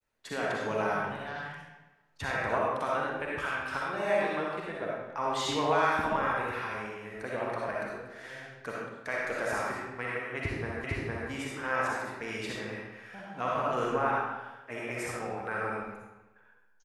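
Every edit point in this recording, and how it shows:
0:10.84: the same again, the last 0.46 s

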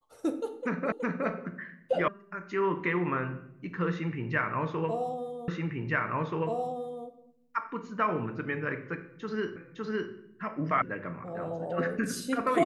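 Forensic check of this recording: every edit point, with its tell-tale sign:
0:00.92: the same again, the last 0.37 s
0:02.08: cut off before it has died away
0:05.48: the same again, the last 1.58 s
0:09.56: the same again, the last 0.56 s
0:10.82: cut off before it has died away

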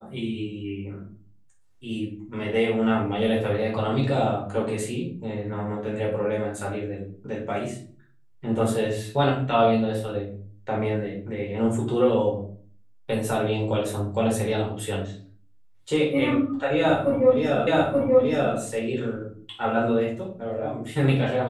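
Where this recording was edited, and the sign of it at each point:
0:17.67: the same again, the last 0.88 s

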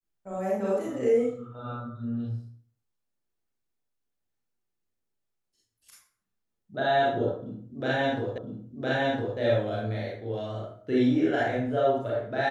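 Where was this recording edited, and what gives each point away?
0:08.38: the same again, the last 1.01 s

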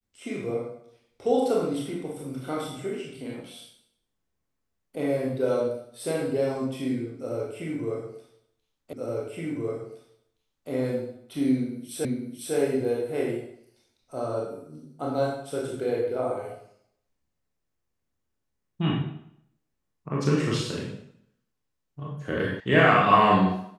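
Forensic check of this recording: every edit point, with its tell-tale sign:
0:08.93: the same again, the last 1.77 s
0:12.05: the same again, the last 0.5 s
0:22.60: cut off before it has died away

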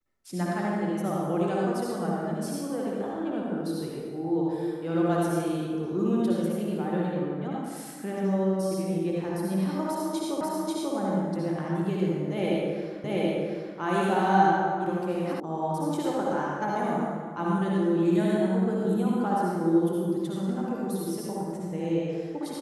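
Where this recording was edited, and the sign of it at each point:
0:10.41: the same again, the last 0.54 s
0:13.04: the same again, the last 0.73 s
0:15.40: cut off before it has died away

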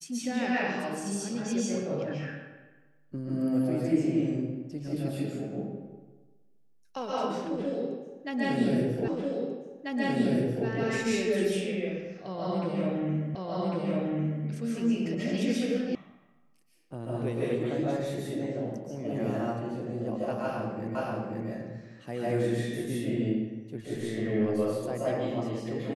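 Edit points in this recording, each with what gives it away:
0:09.08: the same again, the last 1.59 s
0:13.35: the same again, the last 1.1 s
0:15.95: cut off before it has died away
0:20.95: the same again, the last 0.53 s

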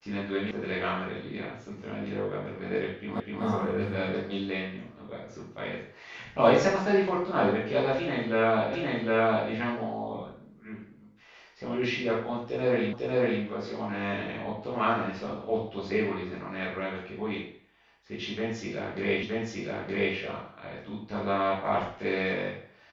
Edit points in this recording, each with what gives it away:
0:00.51: cut off before it has died away
0:03.20: the same again, the last 0.25 s
0:08.73: the same again, the last 0.76 s
0:12.93: the same again, the last 0.5 s
0:19.23: the same again, the last 0.92 s

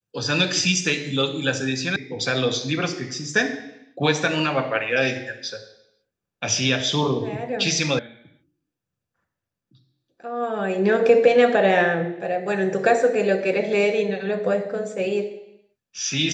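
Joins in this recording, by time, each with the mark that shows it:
0:01.96: cut off before it has died away
0:07.99: cut off before it has died away

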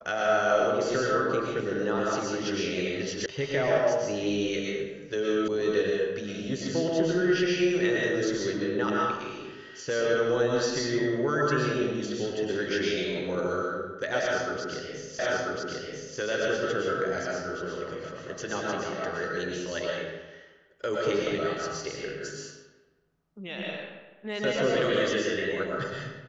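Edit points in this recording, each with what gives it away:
0:03.26: cut off before it has died away
0:05.48: cut off before it has died away
0:15.19: the same again, the last 0.99 s

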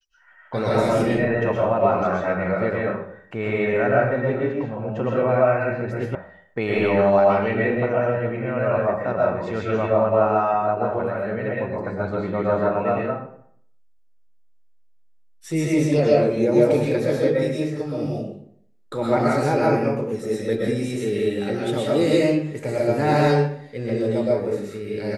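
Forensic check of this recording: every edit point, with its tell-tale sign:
0:06.15: cut off before it has died away

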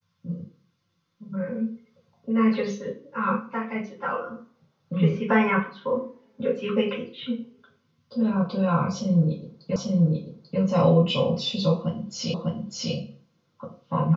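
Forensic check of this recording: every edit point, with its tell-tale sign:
0:09.76: the same again, the last 0.84 s
0:12.34: the same again, the last 0.6 s

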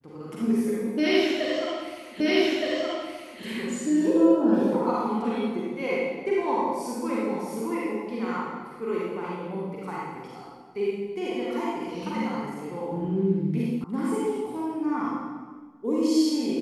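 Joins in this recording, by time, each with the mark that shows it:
0:02.20: the same again, the last 1.22 s
0:13.84: cut off before it has died away

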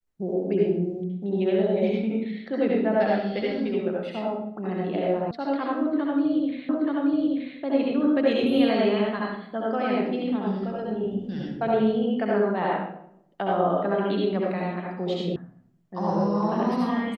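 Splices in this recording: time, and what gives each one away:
0:05.31: cut off before it has died away
0:06.69: the same again, the last 0.88 s
0:15.36: cut off before it has died away

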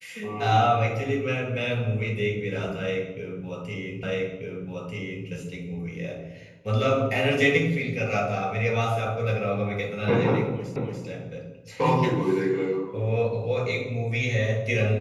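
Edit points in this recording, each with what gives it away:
0:04.03: the same again, the last 1.24 s
0:10.76: the same again, the last 0.29 s

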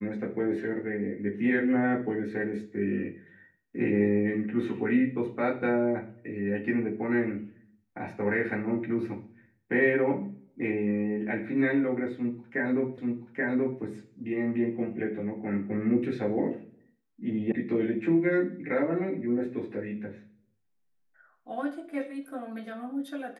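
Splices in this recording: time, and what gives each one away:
0:12.98: the same again, the last 0.83 s
0:17.52: cut off before it has died away

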